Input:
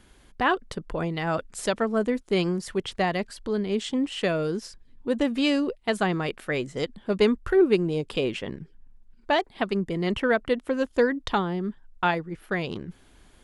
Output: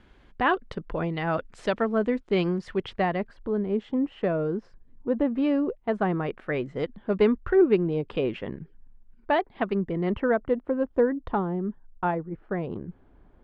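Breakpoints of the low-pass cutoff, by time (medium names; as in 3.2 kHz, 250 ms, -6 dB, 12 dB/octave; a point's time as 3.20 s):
2.83 s 2.9 kHz
3.44 s 1.2 kHz
5.92 s 1.2 kHz
6.57 s 2 kHz
9.73 s 2 kHz
10.61 s 1 kHz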